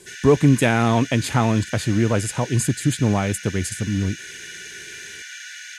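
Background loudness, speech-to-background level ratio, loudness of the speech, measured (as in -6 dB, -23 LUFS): -35.0 LUFS, 14.5 dB, -20.5 LUFS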